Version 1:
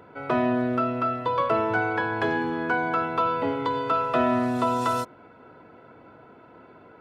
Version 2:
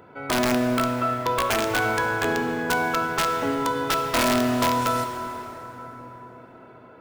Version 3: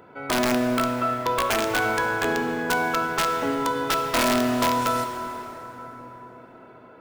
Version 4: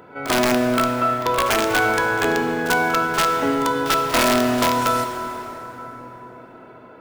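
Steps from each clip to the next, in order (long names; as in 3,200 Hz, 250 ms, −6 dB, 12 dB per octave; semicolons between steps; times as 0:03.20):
high-shelf EQ 6,900 Hz +5 dB; wrap-around overflow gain 15 dB; dense smooth reverb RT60 4.5 s, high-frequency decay 0.55×, DRR 5 dB
parametric band 100 Hz −4.5 dB 0.96 octaves
echo ahead of the sound 43 ms −13.5 dB; level +4 dB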